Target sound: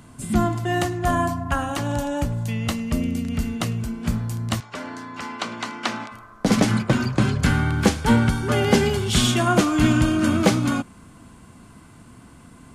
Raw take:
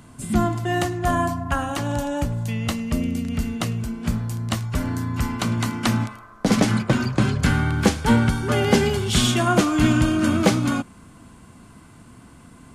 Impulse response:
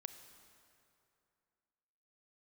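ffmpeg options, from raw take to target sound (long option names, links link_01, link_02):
-filter_complex "[0:a]asettb=1/sr,asplit=3[link_01][link_02][link_03];[link_01]atrim=end=4.604[link_04];[link_02]atrim=start=4.6:end=6.12,asetpts=PTS-STARTPTS,afade=type=in:duration=0.004:curve=qsin,afade=type=out:start_time=1.516:duration=0.004:curve=qsin,highpass=410,lowpass=5600[link_05];[link_03]atrim=start=6.116[link_06];[link_04][link_05]acrossfade=duration=0.004:curve1=hsin:curve2=qsin[link_07];[link_07][link_06]acrossfade=duration=0.004:curve1=qsin:curve2=hsin"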